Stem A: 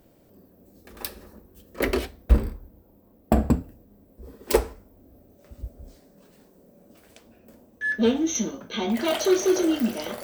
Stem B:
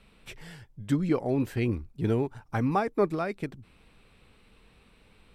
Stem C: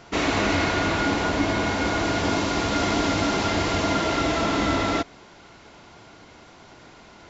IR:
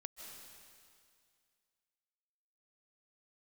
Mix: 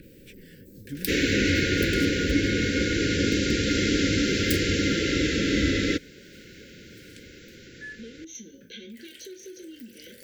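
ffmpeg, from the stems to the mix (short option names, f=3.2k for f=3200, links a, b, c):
-filter_complex "[0:a]acompressor=threshold=-28dB:ratio=10,adynamicequalizer=threshold=0.00224:dfrequency=1600:dqfactor=0.7:tfrequency=1600:tqfactor=0.7:attack=5:release=100:ratio=0.375:range=2:mode=boostabove:tftype=highshelf,volume=-0.5dB,afade=t=out:st=7.23:d=0.62:silence=0.266073[a];[1:a]volume=-11dB[b];[2:a]adelay=950,volume=1dB[c];[a][b][c]amix=inputs=3:normalize=0,acompressor=mode=upward:threshold=-40dB:ratio=2.5,asuperstop=centerf=900:order=20:qfactor=0.97"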